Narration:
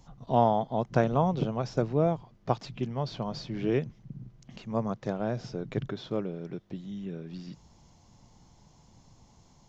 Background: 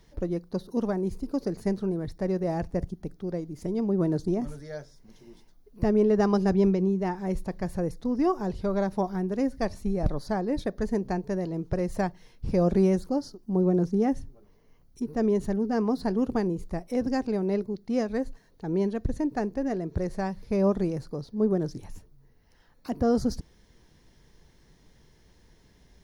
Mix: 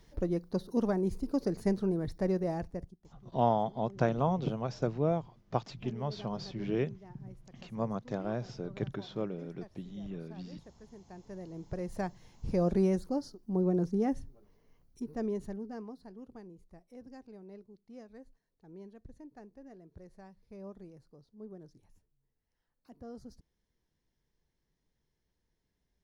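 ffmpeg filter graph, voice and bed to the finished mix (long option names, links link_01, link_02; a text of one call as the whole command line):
ffmpeg -i stem1.wav -i stem2.wav -filter_complex "[0:a]adelay=3050,volume=-4dB[link_01];[1:a]volume=17.5dB,afade=type=out:start_time=2.27:duration=0.73:silence=0.0707946,afade=type=in:start_time=11.03:duration=1.32:silence=0.105925,afade=type=out:start_time=14.69:duration=1.31:silence=0.133352[link_02];[link_01][link_02]amix=inputs=2:normalize=0" out.wav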